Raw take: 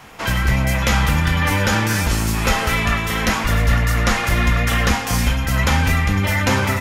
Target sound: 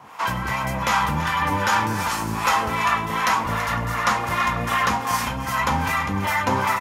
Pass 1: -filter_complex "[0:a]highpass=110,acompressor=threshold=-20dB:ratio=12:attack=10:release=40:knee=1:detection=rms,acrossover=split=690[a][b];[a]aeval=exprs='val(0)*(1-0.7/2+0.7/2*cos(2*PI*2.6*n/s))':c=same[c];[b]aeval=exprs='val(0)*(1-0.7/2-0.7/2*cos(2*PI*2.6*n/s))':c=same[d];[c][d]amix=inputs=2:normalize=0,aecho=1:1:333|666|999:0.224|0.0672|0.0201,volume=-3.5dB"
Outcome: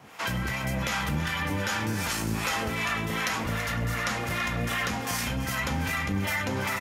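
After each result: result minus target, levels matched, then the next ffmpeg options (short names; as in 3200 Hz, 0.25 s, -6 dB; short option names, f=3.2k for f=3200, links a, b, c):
compressor: peak gain reduction +7 dB; 1000 Hz band -6.0 dB
-filter_complex "[0:a]highpass=110,acrossover=split=690[a][b];[a]aeval=exprs='val(0)*(1-0.7/2+0.7/2*cos(2*PI*2.6*n/s))':c=same[c];[b]aeval=exprs='val(0)*(1-0.7/2-0.7/2*cos(2*PI*2.6*n/s))':c=same[d];[c][d]amix=inputs=2:normalize=0,aecho=1:1:333|666|999:0.224|0.0672|0.0201,volume=-3.5dB"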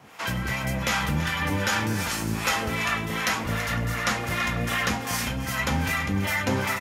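1000 Hz band -6.0 dB
-filter_complex "[0:a]highpass=110,equalizer=f=1k:t=o:w=0.73:g=13.5,acrossover=split=690[a][b];[a]aeval=exprs='val(0)*(1-0.7/2+0.7/2*cos(2*PI*2.6*n/s))':c=same[c];[b]aeval=exprs='val(0)*(1-0.7/2-0.7/2*cos(2*PI*2.6*n/s))':c=same[d];[c][d]amix=inputs=2:normalize=0,aecho=1:1:333|666|999:0.224|0.0672|0.0201,volume=-3.5dB"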